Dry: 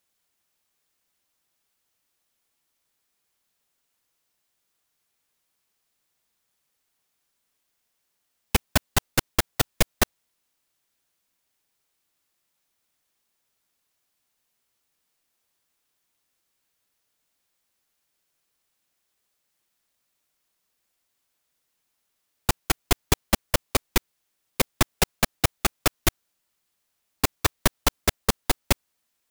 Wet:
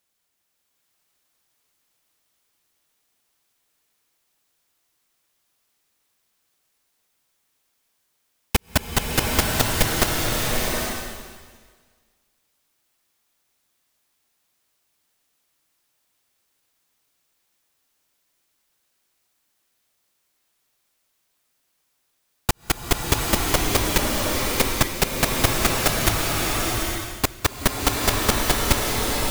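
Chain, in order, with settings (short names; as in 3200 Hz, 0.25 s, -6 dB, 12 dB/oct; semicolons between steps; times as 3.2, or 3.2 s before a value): bloom reverb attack 0.82 s, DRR -2 dB; gain +1 dB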